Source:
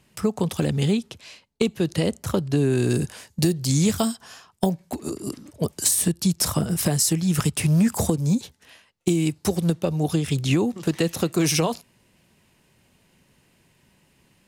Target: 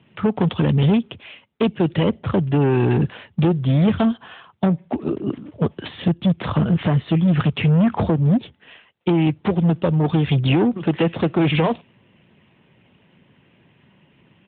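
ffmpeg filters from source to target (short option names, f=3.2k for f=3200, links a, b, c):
-af "aresample=8000,asoftclip=type=hard:threshold=-20.5dB,aresample=44100,volume=7.5dB" -ar 8000 -c:a libopencore_amrnb -b:a 12200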